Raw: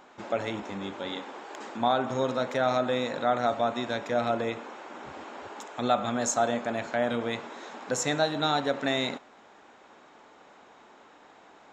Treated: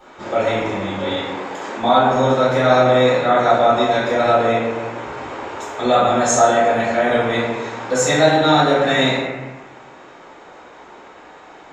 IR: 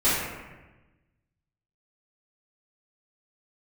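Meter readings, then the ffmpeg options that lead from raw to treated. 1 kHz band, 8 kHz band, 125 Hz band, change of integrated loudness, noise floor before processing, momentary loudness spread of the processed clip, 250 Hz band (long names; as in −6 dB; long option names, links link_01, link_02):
+13.0 dB, +10.5 dB, +14.0 dB, +12.5 dB, −55 dBFS, 14 LU, +11.0 dB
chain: -filter_complex "[0:a]equalizer=frequency=240:width=3.6:gain=-6.5[link_01];[1:a]atrim=start_sample=2205[link_02];[link_01][link_02]afir=irnorm=-1:irlink=0,volume=-3dB"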